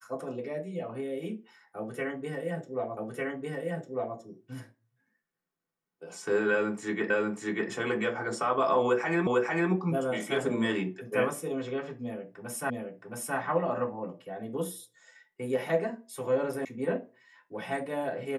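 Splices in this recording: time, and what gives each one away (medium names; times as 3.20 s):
2.97 s: repeat of the last 1.2 s
7.10 s: repeat of the last 0.59 s
9.27 s: repeat of the last 0.45 s
12.70 s: repeat of the last 0.67 s
16.65 s: sound stops dead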